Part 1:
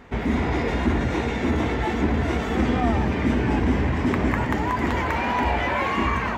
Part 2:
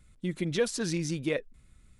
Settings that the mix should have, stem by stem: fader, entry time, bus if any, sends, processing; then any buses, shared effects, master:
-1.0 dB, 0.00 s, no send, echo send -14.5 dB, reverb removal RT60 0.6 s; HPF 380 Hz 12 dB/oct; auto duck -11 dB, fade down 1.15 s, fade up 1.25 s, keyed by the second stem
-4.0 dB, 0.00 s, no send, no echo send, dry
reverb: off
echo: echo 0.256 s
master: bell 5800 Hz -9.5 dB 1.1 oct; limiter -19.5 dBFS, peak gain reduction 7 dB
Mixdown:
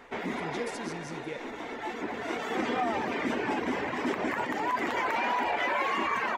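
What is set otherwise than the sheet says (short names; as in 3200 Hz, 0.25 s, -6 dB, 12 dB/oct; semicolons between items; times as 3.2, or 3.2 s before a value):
stem 2 -4.0 dB -> -10.5 dB; master: missing bell 5800 Hz -9.5 dB 1.1 oct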